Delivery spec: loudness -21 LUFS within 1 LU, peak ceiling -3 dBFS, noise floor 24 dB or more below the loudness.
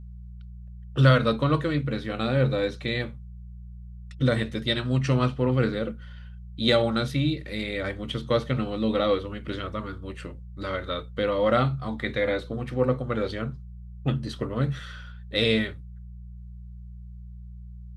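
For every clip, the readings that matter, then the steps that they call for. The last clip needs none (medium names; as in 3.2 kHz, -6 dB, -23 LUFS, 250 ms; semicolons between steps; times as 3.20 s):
hum 60 Hz; highest harmonic 180 Hz; hum level -39 dBFS; loudness -26.5 LUFS; peak level -5.0 dBFS; loudness target -21.0 LUFS
-> de-hum 60 Hz, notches 3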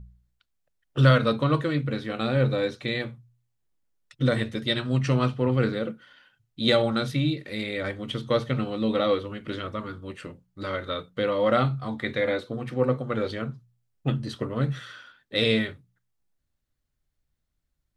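hum not found; loudness -26.5 LUFS; peak level -4.5 dBFS; loudness target -21.0 LUFS
-> trim +5.5 dB; peak limiter -3 dBFS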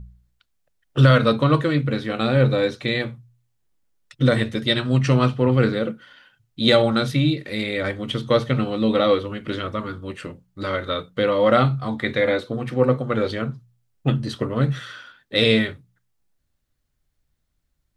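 loudness -21.0 LUFS; peak level -3.0 dBFS; noise floor -72 dBFS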